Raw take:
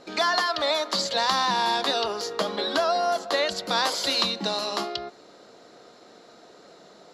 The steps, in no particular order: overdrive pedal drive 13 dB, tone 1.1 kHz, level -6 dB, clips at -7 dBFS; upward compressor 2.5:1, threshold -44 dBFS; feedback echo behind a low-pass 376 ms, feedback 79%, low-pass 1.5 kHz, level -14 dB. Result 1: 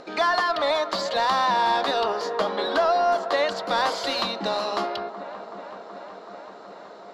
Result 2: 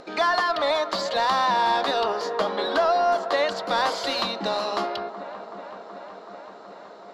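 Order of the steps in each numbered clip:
upward compressor > feedback echo behind a low-pass > overdrive pedal; feedback echo behind a low-pass > overdrive pedal > upward compressor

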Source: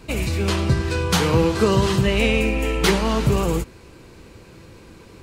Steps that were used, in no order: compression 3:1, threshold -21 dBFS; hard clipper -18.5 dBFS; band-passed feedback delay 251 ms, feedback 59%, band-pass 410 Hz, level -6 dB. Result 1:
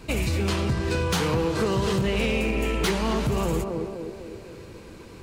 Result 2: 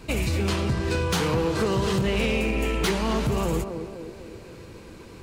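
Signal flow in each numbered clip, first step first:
band-passed feedback delay > compression > hard clipper; compression > band-passed feedback delay > hard clipper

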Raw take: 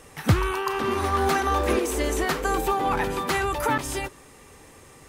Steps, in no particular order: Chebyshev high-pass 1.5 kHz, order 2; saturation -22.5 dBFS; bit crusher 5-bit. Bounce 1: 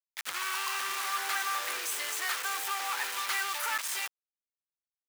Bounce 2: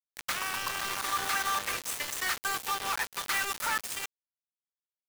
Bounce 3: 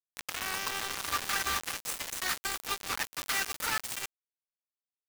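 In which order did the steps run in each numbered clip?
bit crusher > saturation > Chebyshev high-pass; Chebyshev high-pass > bit crusher > saturation; saturation > Chebyshev high-pass > bit crusher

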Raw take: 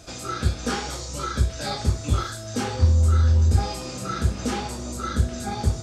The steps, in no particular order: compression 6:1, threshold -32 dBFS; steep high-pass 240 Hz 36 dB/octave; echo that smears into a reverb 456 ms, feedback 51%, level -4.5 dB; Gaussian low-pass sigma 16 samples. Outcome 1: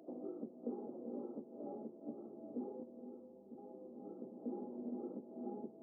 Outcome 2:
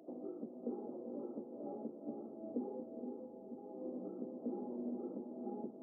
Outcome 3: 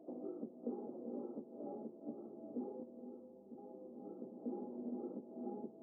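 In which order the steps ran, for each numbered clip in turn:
echo that smears into a reverb > compression > Gaussian low-pass > steep high-pass; compression > echo that smears into a reverb > Gaussian low-pass > steep high-pass; echo that smears into a reverb > compression > steep high-pass > Gaussian low-pass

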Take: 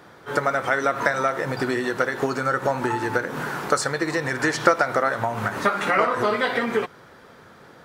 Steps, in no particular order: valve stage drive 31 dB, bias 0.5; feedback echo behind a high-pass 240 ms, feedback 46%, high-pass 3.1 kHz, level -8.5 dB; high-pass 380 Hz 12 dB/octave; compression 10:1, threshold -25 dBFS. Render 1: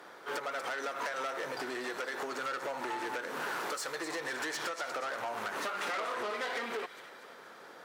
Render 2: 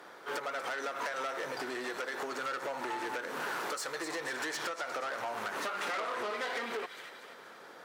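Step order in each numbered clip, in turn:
compression > feedback echo behind a high-pass > valve stage > high-pass; feedback echo behind a high-pass > compression > valve stage > high-pass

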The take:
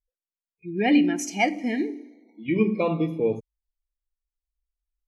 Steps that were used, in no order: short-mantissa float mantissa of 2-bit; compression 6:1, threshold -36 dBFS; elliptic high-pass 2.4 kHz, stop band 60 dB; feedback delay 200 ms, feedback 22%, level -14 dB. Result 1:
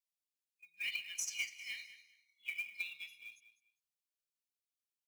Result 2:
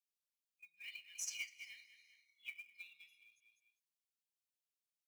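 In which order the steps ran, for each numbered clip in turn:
elliptic high-pass > compression > feedback delay > short-mantissa float; feedback delay > compression > elliptic high-pass > short-mantissa float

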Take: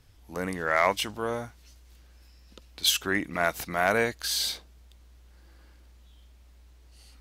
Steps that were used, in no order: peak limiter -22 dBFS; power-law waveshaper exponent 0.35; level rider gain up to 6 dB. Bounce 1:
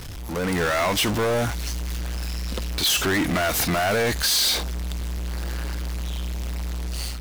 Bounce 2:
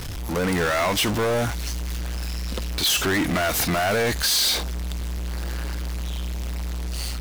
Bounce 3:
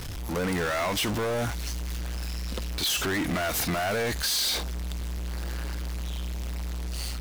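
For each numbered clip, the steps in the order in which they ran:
peak limiter > power-law waveshaper > level rider; peak limiter > level rider > power-law waveshaper; level rider > peak limiter > power-law waveshaper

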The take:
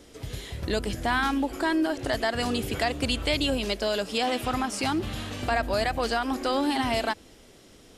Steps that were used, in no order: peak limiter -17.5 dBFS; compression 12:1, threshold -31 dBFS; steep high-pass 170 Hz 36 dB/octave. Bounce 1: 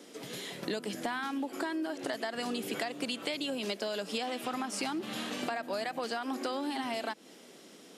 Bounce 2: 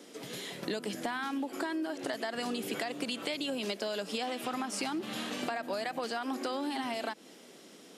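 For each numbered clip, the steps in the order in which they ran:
steep high-pass > compression > peak limiter; peak limiter > steep high-pass > compression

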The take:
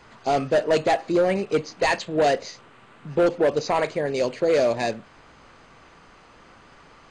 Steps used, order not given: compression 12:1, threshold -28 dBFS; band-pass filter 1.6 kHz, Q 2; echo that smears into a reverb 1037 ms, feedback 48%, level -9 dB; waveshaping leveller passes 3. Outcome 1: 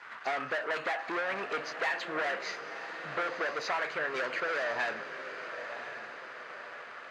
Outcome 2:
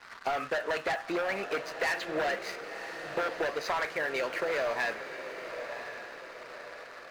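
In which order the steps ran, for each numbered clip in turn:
waveshaping leveller > band-pass filter > compression > echo that smears into a reverb; band-pass filter > waveshaping leveller > compression > echo that smears into a reverb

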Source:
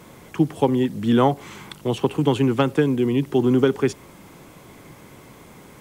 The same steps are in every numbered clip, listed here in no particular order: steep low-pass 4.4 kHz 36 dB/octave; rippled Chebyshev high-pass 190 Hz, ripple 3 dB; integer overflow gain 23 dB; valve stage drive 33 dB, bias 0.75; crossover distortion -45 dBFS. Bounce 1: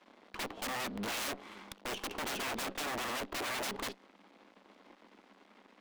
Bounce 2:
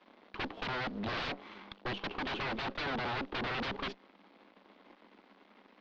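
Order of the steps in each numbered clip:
steep low-pass > crossover distortion > integer overflow > rippled Chebyshev high-pass > valve stage; crossover distortion > rippled Chebyshev high-pass > integer overflow > valve stage > steep low-pass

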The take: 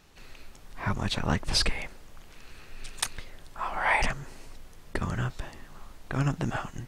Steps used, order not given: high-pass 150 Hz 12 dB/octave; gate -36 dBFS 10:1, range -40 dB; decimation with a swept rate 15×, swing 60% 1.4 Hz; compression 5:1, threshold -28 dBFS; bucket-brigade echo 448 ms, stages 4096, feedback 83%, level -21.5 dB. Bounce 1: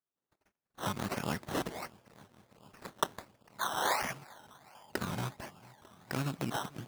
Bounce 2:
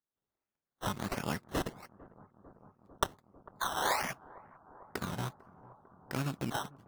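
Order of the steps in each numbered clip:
compression > gate > bucket-brigade echo > decimation with a swept rate > high-pass; compression > high-pass > decimation with a swept rate > gate > bucket-brigade echo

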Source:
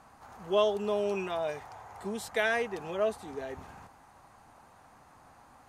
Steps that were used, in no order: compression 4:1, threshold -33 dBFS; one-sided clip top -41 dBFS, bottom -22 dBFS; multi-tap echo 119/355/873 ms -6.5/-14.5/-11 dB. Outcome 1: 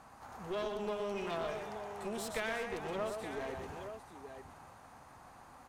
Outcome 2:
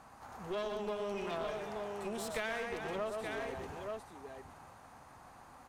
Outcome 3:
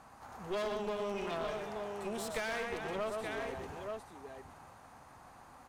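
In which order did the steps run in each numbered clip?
compression > multi-tap echo > one-sided clip; multi-tap echo > compression > one-sided clip; multi-tap echo > one-sided clip > compression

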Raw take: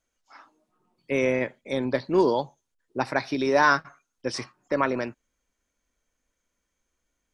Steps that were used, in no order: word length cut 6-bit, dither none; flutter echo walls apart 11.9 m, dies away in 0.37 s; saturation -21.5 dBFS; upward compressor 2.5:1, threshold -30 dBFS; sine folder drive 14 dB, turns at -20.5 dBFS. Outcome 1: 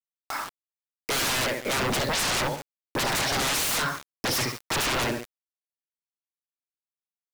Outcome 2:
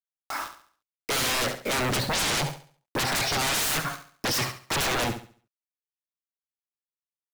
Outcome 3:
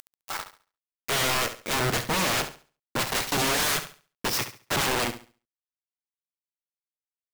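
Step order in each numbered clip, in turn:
flutter echo > sine folder > word length cut > saturation > upward compressor; sine folder > word length cut > flutter echo > upward compressor > saturation; upward compressor > word length cut > saturation > sine folder > flutter echo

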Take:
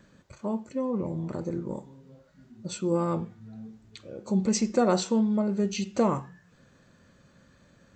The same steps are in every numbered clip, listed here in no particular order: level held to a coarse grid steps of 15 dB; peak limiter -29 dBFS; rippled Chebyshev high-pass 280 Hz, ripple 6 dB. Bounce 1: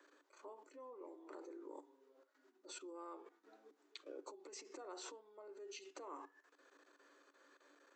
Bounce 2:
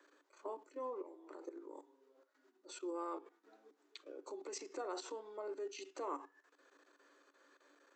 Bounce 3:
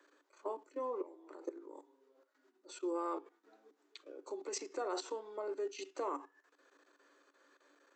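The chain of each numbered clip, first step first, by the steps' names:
peak limiter > level held to a coarse grid > rippled Chebyshev high-pass; level held to a coarse grid > peak limiter > rippled Chebyshev high-pass; level held to a coarse grid > rippled Chebyshev high-pass > peak limiter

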